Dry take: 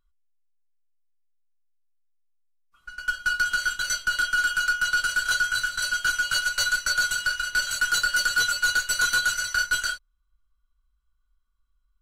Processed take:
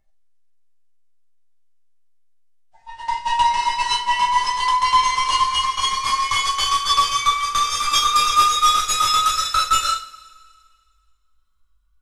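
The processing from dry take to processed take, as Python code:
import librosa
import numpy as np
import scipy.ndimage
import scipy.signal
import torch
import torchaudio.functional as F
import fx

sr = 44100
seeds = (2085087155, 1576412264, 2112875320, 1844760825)

y = fx.pitch_glide(x, sr, semitones=-10.5, runs='ending unshifted')
y = fx.rev_double_slope(y, sr, seeds[0], early_s=0.33, late_s=2.0, knee_db=-22, drr_db=-0.5)
y = y * 10.0 ** (4.5 / 20.0)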